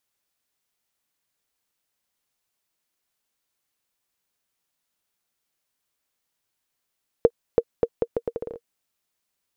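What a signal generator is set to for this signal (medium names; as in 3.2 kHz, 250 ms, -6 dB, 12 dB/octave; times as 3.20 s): bouncing ball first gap 0.33 s, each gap 0.76, 468 Hz, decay 54 ms -3.5 dBFS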